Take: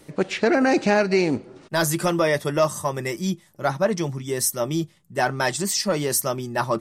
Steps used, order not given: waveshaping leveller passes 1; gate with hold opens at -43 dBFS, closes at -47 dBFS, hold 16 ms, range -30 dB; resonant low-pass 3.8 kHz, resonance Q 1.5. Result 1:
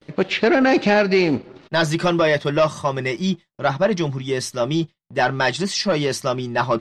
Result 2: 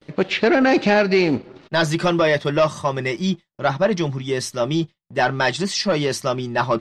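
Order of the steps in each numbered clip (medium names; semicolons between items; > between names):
gate with hold > waveshaping leveller > resonant low-pass; waveshaping leveller > resonant low-pass > gate with hold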